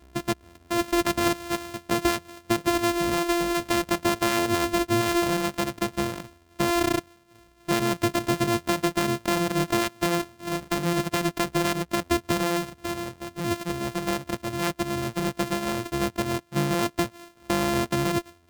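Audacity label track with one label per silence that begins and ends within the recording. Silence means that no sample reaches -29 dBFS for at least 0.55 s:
7.000000	7.690000	silence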